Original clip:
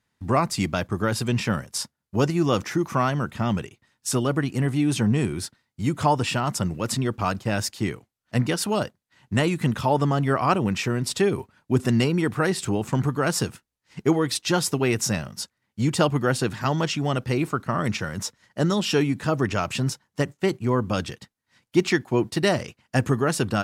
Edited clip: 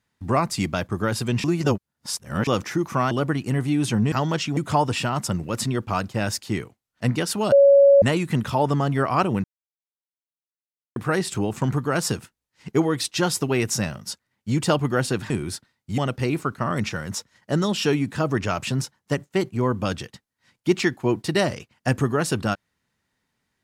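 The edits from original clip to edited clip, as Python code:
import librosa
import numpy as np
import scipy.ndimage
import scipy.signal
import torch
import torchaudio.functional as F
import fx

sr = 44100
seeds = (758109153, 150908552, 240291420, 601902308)

y = fx.edit(x, sr, fx.reverse_span(start_s=1.44, length_s=1.03),
    fx.cut(start_s=3.11, length_s=1.08),
    fx.swap(start_s=5.2, length_s=0.68, other_s=16.61, other_length_s=0.45),
    fx.bleep(start_s=8.83, length_s=0.5, hz=559.0, db=-9.5),
    fx.silence(start_s=10.75, length_s=1.52), tone=tone)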